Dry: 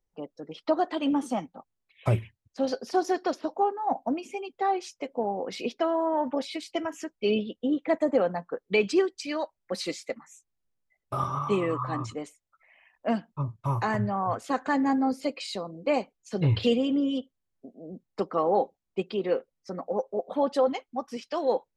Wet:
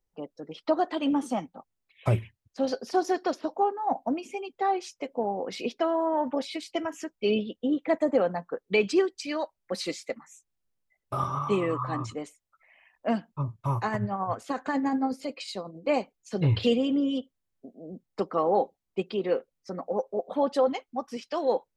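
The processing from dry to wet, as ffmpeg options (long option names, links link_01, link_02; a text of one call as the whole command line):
ffmpeg -i in.wav -filter_complex "[0:a]asettb=1/sr,asplit=3[link_01][link_02][link_03];[link_01]atrim=end=13.774[link_04];[link_02]atrim=start=13.77:end=15.89,asetpts=PTS-STARTPTS,afade=type=in:duration=0.004:curve=qsin,afade=type=out:start_time=2.116:duration=0.004:curve=qsin,tremolo=f=11:d=0.5[link_05];[link_03]atrim=start=15.886[link_06];[link_04][link_05]acrossfade=duration=0.004:curve1=hsin:curve2=qsin[link_07];[link_07][link_06]acrossfade=duration=0.004:curve1=qsin:curve2=hsin" out.wav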